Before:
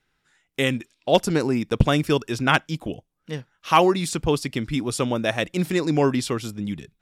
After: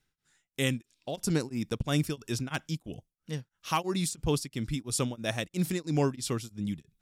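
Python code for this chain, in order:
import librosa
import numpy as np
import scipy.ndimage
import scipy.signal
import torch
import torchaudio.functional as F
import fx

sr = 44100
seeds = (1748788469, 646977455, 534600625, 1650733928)

y = fx.bass_treble(x, sr, bass_db=7, treble_db=10)
y = y * np.abs(np.cos(np.pi * 3.0 * np.arange(len(y)) / sr))
y = y * 10.0 ** (-8.5 / 20.0)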